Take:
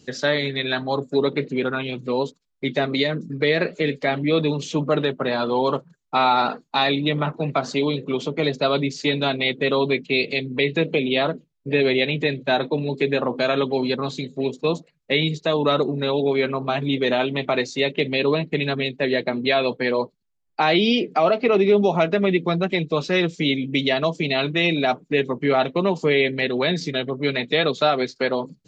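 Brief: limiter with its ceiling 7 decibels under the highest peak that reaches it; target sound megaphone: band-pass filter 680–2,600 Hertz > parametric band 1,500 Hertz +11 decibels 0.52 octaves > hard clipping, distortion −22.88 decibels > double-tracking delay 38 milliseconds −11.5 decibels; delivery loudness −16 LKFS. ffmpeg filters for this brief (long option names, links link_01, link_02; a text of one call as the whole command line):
ffmpeg -i in.wav -filter_complex "[0:a]alimiter=limit=-14dB:level=0:latency=1,highpass=680,lowpass=2600,equalizer=frequency=1500:width_type=o:width=0.52:gain=11,asoftclip=type=hard:threshold=-15.5dB,asplit=2[link_01][link_02];[link_02]adelay=38,volume=-11.5dB[link_03];[link_01][link_03]amix=inputs=2:normalize=0,volume=11dB" out.wav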